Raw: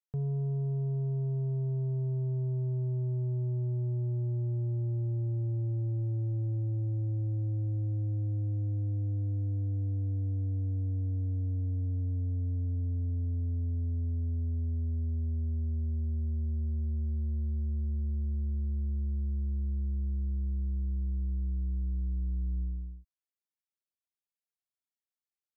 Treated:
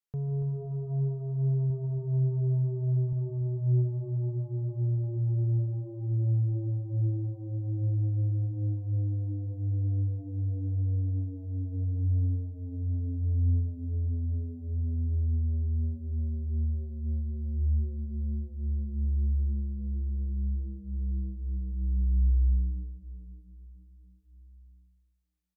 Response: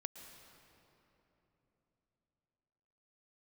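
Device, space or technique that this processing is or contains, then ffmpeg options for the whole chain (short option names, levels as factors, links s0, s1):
cave: -filter_complex "[0:a]asettb=1/sr,asplit=3[s0][s1][s2];[s0]atrim=end=1.704[s3];[s1]atrim=start=1.7:end=3.13,asetpts=PTS-STARTPTS,afade=t=in:d=0.004:c=qsin,afade=t=out:st=1.426:d=0.004:c=qsin,lowshelf=f=81:g=11.5[s4];[s2]atrim=start=3.126[s5];[s3][s4]acrossfade=d=0.004:c1=hsin:c2=qsin[s6];[s6][s5]acrossfade=d=0.004:c1=qsin:c2=hsin,aecho=1:1:284:0.376[s7];[1:a]atrim=start_sample=2205[s8];[s7][s8]afir=irnorm=-1:irlink=0,volume=1.58"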